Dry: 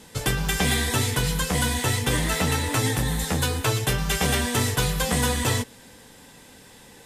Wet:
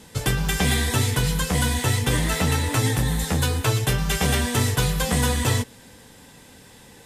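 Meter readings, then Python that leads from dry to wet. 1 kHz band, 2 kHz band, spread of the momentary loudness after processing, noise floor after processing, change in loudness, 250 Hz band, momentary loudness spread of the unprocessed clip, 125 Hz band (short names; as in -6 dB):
0.0 dB, 0.0 dB, 2 LU, -48 dBFS, +1.5 dB, +1.5 dB, 3 LU, +3.5 dB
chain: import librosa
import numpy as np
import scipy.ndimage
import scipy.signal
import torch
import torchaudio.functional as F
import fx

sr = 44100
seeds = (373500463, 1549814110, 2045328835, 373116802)

y = fx.peak_eq(x, sr, hz=90.0, db=4.0, octaves=2.1)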